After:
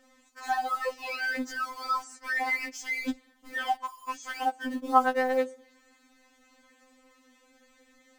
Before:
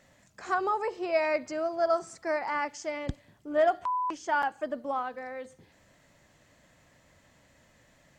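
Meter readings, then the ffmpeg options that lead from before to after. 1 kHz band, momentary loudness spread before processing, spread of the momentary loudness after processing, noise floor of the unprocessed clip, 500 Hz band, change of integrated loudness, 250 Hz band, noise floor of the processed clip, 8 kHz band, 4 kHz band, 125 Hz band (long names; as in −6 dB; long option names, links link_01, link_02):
+1.5 dB, 13 LU, 12 LU, −64 dBFS, −5.0 dB, 0.0 dB, +2.5 dB, −64 dBFS, +3.5 dB, +6.0 dB, below −20 dB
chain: -filter_complex "[0:a]asplit=2[link_01][link_02];[link_02]aeval=exprs='val(0)*gte(abs(val(0)),0.0133)':channel_layout=same,volume=-3.5dB[link_03];[link_01][link_03]amix=inputs=2:normalize=0,afftfilt=real='re*3.46*eq(mod(b,12),0)':imag='im*3.46*eq(mod(b,12),0)':win_size=2048:overlap=0.75,volume=3dB"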